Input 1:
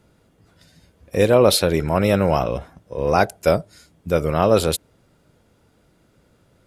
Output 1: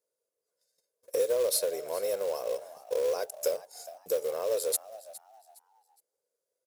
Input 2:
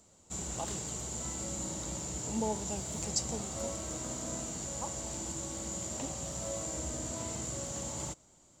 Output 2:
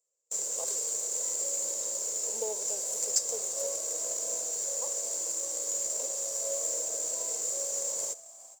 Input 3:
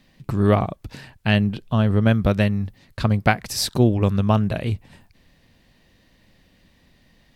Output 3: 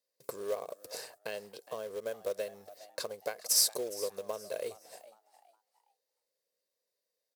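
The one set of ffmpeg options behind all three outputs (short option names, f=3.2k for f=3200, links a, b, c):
-filter_complex "[0:a]agate=range=-26dB:threshold=-47dB:ratio=16:detection=peak,aecho=1:1:1.9:0.42,acompressor=threshold=-29dB:ratio=5,highpass=f=480:t=q:w=4.6,aexciter=amount=9.2:drive=0.9:freq=4.5k,acrusher=bits=4:mode=log:mix=0:aa=0.000001,asplit=4[a][b][c][d];[b]adelay=413,afreqshift=110,volume=-17.5dB[e];[c]adelay=826,afreqshift=220,volume=-27.7dB[f];[d]adelay=1239,afreqshift=330,volume=-37.8dB[g];[a][e][f][g]amix=inputs=4:normalize=0,volume=-9dB"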